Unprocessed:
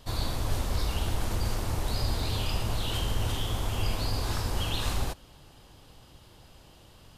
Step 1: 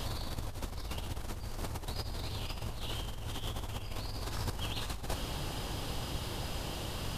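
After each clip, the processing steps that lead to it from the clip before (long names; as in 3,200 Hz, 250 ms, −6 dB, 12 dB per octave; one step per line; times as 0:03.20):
brickwall limiter −24 dBFS, peak gain reduction 7.5 dB
compressor whose output falls as the input rises −39 dBFS, ratio −0.5
level +5.5 dB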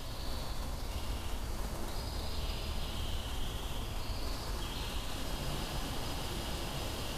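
brickwall limiter −31 dBFS, peak gain reduction 8.5 dB
flanger 1 Hz, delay 2.8 ms, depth 3.3 ms, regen −53%
reverb whose tail is shaped and stops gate 420 ms flat, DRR −4.5 dB
level +1 dB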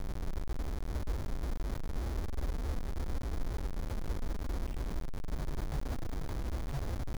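expanding power law on the bin magnitudes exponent 3.3
bit reduction 7 bits
bad sample-rate conversion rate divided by 8×, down filtered, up hold
level +3.5 dB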